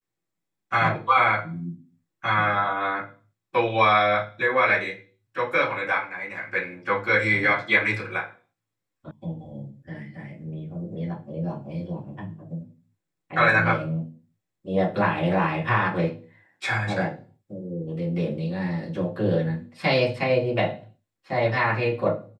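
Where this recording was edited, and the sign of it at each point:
9.11 s: sound stops dead

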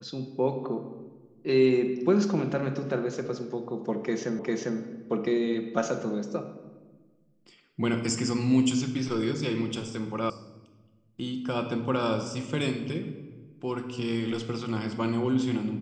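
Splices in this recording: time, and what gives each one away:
4.39 s: repeat of the last 0.4 s
10.30 s: sound stops dead

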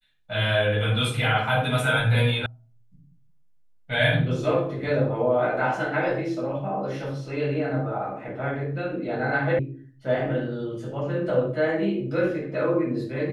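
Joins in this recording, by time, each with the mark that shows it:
2.46 s: sound stops dead
9.59 s: sound stops dead

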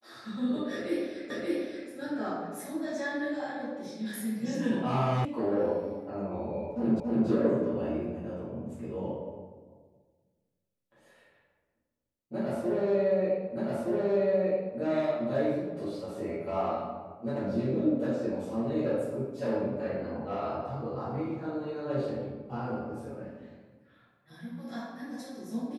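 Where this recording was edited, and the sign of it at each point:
1.30 s: repeat of the last 0.58 s
5.25 s: sound stops dead
7.00 s: repeat of the last 0.28 s
13.57 s: repeat of the last 1.22 s

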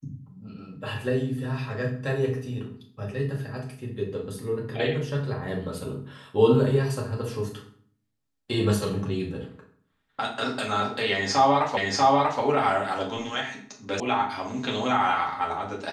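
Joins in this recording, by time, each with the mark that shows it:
11.77 s: repeat of the last 0.64 s
14.00 s: sound stops dead

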